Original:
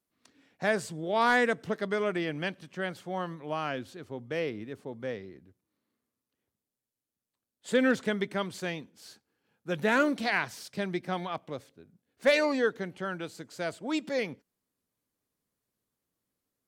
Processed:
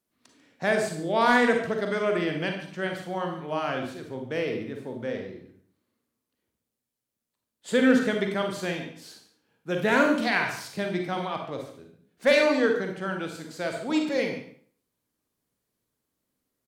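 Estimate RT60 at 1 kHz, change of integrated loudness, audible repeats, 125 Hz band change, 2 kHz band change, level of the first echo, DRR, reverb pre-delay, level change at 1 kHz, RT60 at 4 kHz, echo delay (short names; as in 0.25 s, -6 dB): 0.55 s, +4.0 dB, 1, +4.0 dB, +3.5 dB, -14.0 dB, 2.5 dB, 36 ms, +4.0 dB, 0.50 s, 0.143 s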